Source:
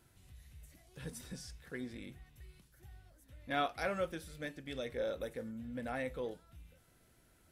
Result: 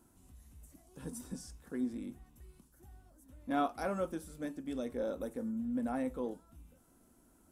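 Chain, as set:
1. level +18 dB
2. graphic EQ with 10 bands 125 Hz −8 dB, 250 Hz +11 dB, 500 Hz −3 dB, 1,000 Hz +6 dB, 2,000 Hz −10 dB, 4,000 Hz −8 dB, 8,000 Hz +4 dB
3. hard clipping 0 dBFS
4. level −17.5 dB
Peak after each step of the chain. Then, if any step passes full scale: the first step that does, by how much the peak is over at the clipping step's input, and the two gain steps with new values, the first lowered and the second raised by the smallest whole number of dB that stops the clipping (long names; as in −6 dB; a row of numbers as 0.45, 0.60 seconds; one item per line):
−4.0, −2.5, −2.5, −20.0 dBFS
no step passes full scale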